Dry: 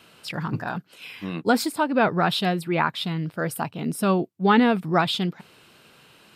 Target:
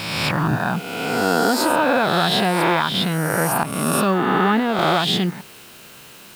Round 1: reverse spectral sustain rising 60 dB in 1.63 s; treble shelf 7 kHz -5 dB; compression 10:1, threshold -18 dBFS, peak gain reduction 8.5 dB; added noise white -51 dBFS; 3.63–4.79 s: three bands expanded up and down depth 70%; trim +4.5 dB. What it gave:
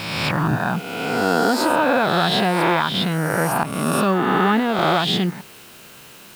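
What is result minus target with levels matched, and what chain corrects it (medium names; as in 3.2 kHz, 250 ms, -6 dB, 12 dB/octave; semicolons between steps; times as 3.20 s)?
8 kHz band -4.0 dB
reverse spectral sustain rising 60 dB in 1.63 s; treble shelf 7 kHz +2.5 dB; compression 10:1, threshold -18 dBFS, peak gain reduction 8.5 dB; added noise white -51 dBFS; 3.63–4.79 s: three bands expanded up and down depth 70%; trim +4.5 dB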